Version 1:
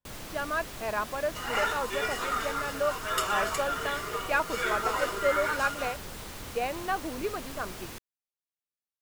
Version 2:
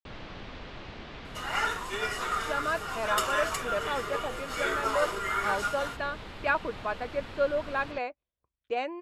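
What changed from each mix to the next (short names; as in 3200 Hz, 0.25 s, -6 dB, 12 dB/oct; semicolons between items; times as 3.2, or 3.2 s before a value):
speech: entry +2.15 s; first sound: add LPF 3900 Hz 24 dB/oct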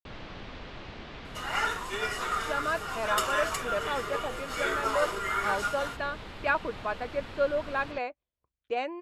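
none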